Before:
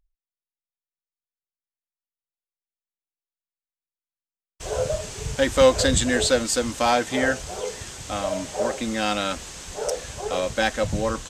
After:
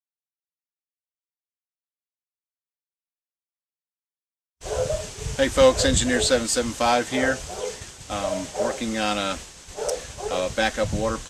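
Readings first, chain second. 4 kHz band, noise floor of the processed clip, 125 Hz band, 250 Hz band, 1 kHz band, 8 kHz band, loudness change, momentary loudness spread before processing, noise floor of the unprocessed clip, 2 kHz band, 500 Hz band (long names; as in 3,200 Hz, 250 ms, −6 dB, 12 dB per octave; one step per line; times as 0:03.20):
+0.5 dB, below −85 dBFS, 0.0 dB, 0.0 dB, 0.0 dB, +0.5 dB, 0.0 dB, 13 LU, below −85 dBFS, −0.5 dB, 0.0 dB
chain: downward expander −32 dBFS
Ogg Vorbis 48 kbit/s 32,000 Hz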